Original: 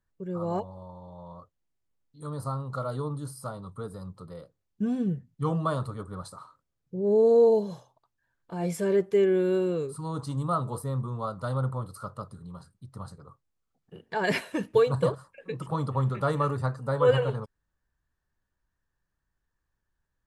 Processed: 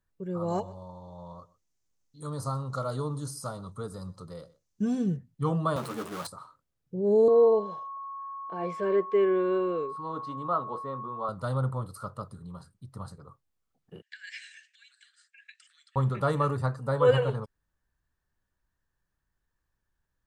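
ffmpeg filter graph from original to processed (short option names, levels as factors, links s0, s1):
-filter_complex "[0:a]asettb=1/sr,asplit=3[s0][s1][s2];[s0]atrim=end=0.484[s3];[s1]atrim=start=0.48:end=5.17,asetpts=PTS-STARTPTS,afade=t=in:d=0.004:c=qsin,afade=t=out:st=4.686:d=0.004:c=qsin,equalizer=f=6200:t=o:w=0.74:g=13,aecho=1:1:125:0.0944,atrim=end_sample=206829[s4];[s2]atrim=start=5.166[s5];[s3][s4]acrossfade=d=0.004:c1=hsin:c2=qsin[s6];[s6][s5]acrossfade=d=0.004:c1=qsin:c2=hsin,asettb=1/sr,asplit=3[s7][s8][s9];[s7]atrim=end=5.764[s10];[s8]atrim=start=5.76:end=6.27,asetpts=PTS-STARTPTS,afade=t=in:d=0.004:c=qsin,afade=t=out:st=0.506:d=0.004:c=qsin,aeval=exprs='val(0)+0.5*0.0188*sgn(val(0))':c=same,highpass=f=170:w=0.5412,highpass=f=170:w=1.3066,asplit=2[s11][s12];[s12]adelay=13,volume=0.531[s13];[s11][s13]amix=inputs=2:normalize=0,atrim=end_sample=22491[s14];[s9]atrim=start=6.266[s15];[s10][s14]acrossfade=d=0.004:c1=hsin:c2=qsin[s16];[s16][s15]acrossfade=d=0.004:c1=qsin:c2=hsin,asettb=1/sr,asplit=3[s17][s18][s19];[s17]atrim=end=7.284[s20];[s18]atrim=start=7.28:end=11.29,asetpts=PTS-STARTPTS,afade=t=in:d=0.004:c=qsin,afade=t=out:st=4.006:d=0.004:c=qsin,aeval=exprs='val(0)+0.0158*sin(2*PI*1100*n/s)':c=same,highpass=300,lowpass=2700[s21];[s19]atrim=start=11.286[s22];[s20][s21]acrossfade=d=0.004:c1=hsin:c2=qsin[s23];[s23][s22]acrossfade=d=0.004:c1=qsin:c2=hsin,asettb=1/sr,asplit=3[s24][s25][s26];[s24]atrim=end=14.024[s27];[s25]atrim=start=14.02:end=15.96,asetpts=PTS-STARTPTS,afade=t=in:d=0.004:c=qsin,afade=t=out:st=1.936:d=0.004:c=qsin,highshelf=f=6000:g=3,acompressor=threshold=0.0178:ratio=8:attack=3.2:release=140:knee=1:detection=peak,asuperpass=centerf=3800:order=20:qfactor=0.56[s28];[s26]atrim=start=15.956[s29];[s27][s28]acrossfade=d=0.004:c1=hsin:c2=qsin[s30];[s30][s29]acrossfade=d=0.004:c1=qsin:c2=hsin"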